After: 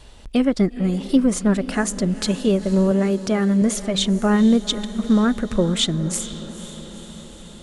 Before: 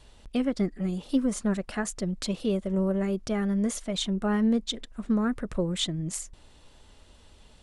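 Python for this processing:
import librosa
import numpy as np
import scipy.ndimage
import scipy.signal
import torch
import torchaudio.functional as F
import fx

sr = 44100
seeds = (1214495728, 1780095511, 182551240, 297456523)

y = fx.highpass(x, sr, hz=110.0, slope=12, at=(2.91, 3.62))
y = fx.echo_diffused(y, sr, ms=479, feedback_pct=65, wet_db=-15.0)
y = y * 10.0 ** (8.5 / 20.0)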